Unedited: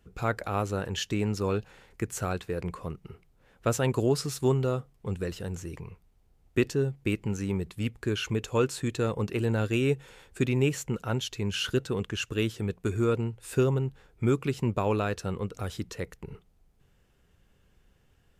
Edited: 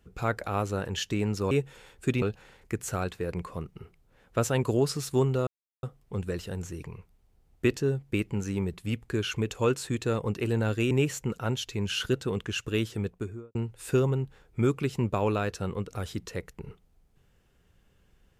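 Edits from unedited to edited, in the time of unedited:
4.76 s: insert silence 0.36 s
9.84–10.55 s: move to 1.51 s
12.61–13.19 s: studio fade out

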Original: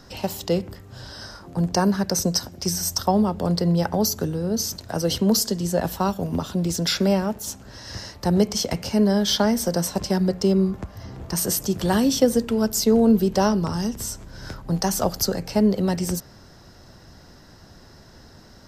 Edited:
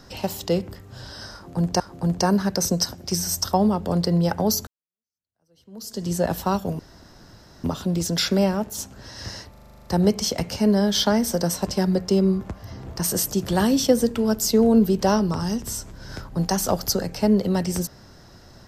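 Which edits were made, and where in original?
1.34–1.80 s: loop, 2 plays
4.21–5.60 s: fade in exponential
6.33 s: insert room tone 0.85 s
8.19 s: stutter 0.04 s, 10 plays

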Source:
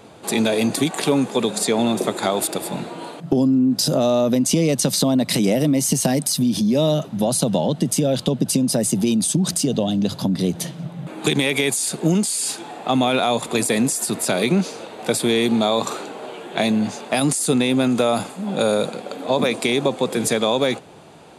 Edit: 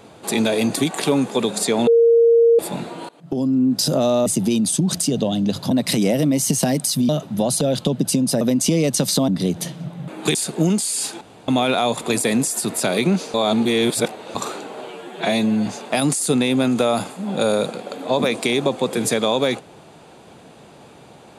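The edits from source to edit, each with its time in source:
1.87–2.59 s: bleep 464 Hz -9.5 dBFS
3.09–3.63 s: fade in, from -22.5 dB
4.26–5.13 s: swap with 8.82–10.27 s
6.51–6.91 s: delete
7.43–8.02 s: delete
11.34–11.80 s: delete
12.66–12.93 s: room tone
14.79–15.80 s: reverse
16.35–16.86 s: stretch 1.5×

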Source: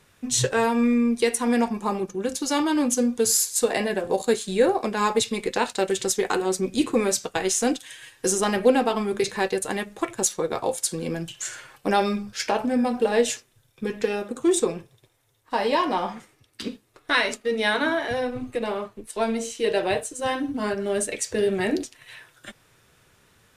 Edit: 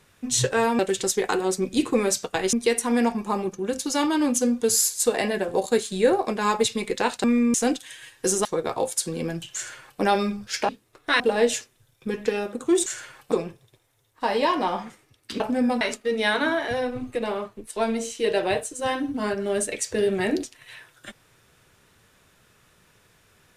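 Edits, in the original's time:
0.79–1.09 s: swap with 5.80–7.54 s
8.45–10.31 s: delete
11.41–11.87 s: copy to 14.62 s
12.55–12.96 s: swap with 16.70–17.21 s

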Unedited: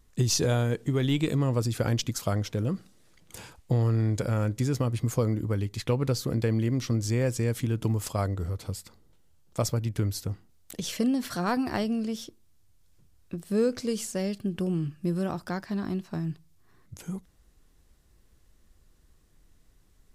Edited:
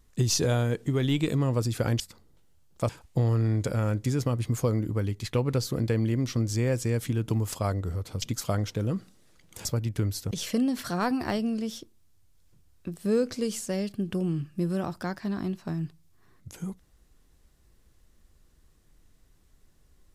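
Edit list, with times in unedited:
2.00–3.43 s: swap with 8.76–9.65 s
10.31–10.77 s: delete

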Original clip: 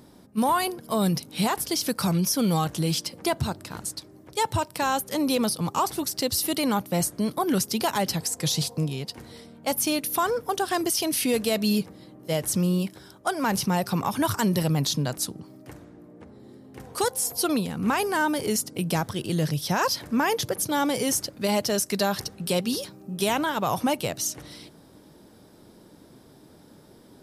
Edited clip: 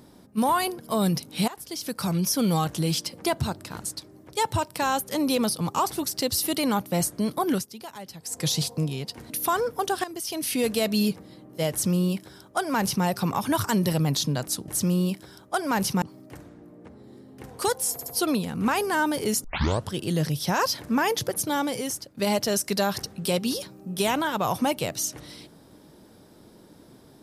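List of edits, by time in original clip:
1.48–2.33 s: fade in, from -17 dB
7.52–8.37 s: dip -15 dB, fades 0.14 s
9.30–10.00 s: delete
10.74–11.39 s: fade in, from -15 dB
12.41–13.75 s: copy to 15.38 s
17.28 s: stutter 0.07 s, 3 plays
18.66 s: tape start 0.47 s
20.62–21.39 s: fade out, to -12 dB

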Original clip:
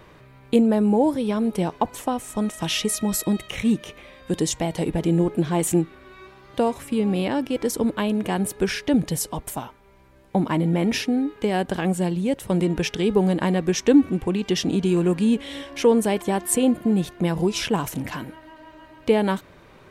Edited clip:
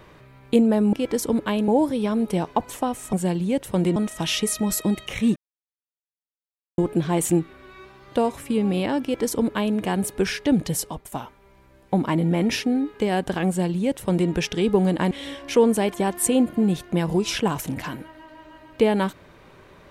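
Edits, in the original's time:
3.78–5.20 s: mute
7.44–8.19 s: copy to 0.93 s
9.23–9.54 s: fade out, to -13 dB
11.89–12.72 s: copy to 2.38 s
13.53–15.39 s: delete

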